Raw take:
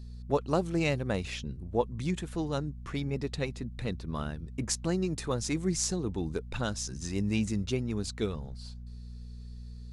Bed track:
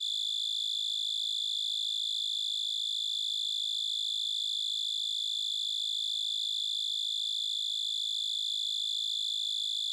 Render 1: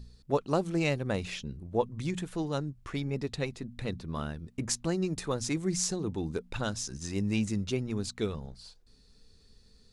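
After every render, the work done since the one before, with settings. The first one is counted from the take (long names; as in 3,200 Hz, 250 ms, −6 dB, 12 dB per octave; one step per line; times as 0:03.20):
hum removal 60 Hz, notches 4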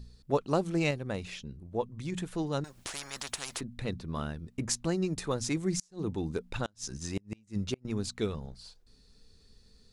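0:00.91–0:02.12: clip gain −4 dB
0:02.64–0:03.61: every bin compressed towards the loudest bin 10 to 1
0:05.72–0:07.85: gate with flip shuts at −20 dBFS, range −34 dB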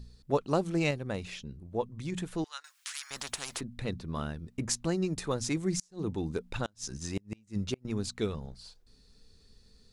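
0:02.44–0:03.11: high-pass filter 1,300 Hz 24 dB per octave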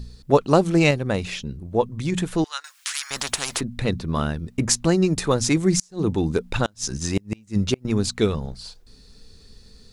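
level +11.5 dB
brickwall limiter −3 dBFS, peak gain reduction 0.5 dB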